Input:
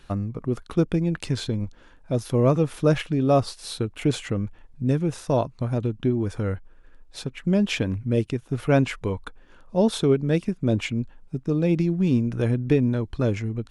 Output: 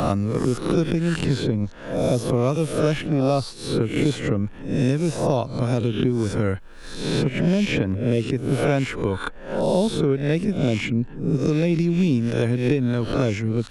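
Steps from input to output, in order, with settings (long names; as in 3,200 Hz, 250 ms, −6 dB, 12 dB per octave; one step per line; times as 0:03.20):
peak hold with a rise ahead of every peak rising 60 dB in 0.57 s
multiband upward and downward compressor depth 100%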